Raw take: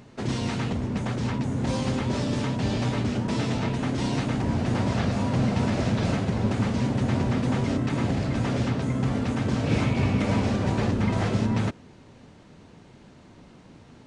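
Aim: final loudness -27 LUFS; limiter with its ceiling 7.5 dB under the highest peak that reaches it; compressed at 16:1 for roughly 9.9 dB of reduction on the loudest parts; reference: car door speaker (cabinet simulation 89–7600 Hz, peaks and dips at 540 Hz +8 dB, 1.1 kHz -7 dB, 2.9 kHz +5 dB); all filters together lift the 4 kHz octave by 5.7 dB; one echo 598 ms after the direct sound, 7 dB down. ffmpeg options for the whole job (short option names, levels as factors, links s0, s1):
-af "equalizer=f=4000:t=o:g=4.5,acompressor=threshold=0.0355:ratio=16,alimiter=level_in=1.58:limit=0.0631:level=0:latency=1,volume=0.631,highpass=89,equalizer=f=540:t=q:w=4:g=8,equalizer=f=1100:t=q:w=4:g=-7,equalizer=f=2900:t=q:w=4:g=5,lowpass=f=7600:w=0.5412,lowpass=f=7600:w=1.3066,aecho=1:1:598:0.447,volume=2.82"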